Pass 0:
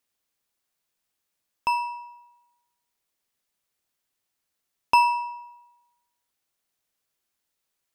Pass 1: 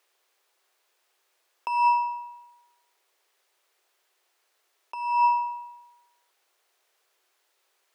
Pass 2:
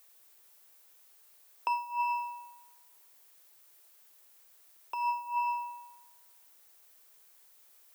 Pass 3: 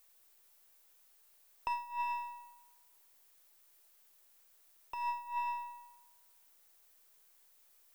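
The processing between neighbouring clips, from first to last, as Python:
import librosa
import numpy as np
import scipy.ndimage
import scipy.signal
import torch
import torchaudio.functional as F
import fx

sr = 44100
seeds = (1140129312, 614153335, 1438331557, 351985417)

y1 = fx.over_compress(x, sr, threshold_db=-32.0, ratio=-1.0)
y1 = scipy.signal.sosfilt(scipy.signal.ellip(4, 1.0, 40, 360.0, 'highpass', fs=sr, output='sos'), y1)
y1 = fx.high_shelf(y1, sr, hz=5300.0, db=-9.5)
y1 = y1 * 10.0 ** (8.0 / 20.0)
y2 = y1 + 10.0 ** (-9.5 / 20.0) * np.pad(y1, (int(240 * sr / 1000.0), 0))[:len(y1)]
y2 = fx.over_compress(y2, sr, threshold_db=-27.0, ratio=-0.5)
y2 = fx.dmg_noise_colour(y2, sr, seeds[0], colour='violet', level_db=-57.0)
y2 = y2 * 10.0 ** (-4.0 / 20.0)
y3 = np.where(y2 < 0.0, 10.0 ** (-3.0 / 20.0) * y2, y2)
y3 = y3 * 10.0 ** (-4.0 / 20.0)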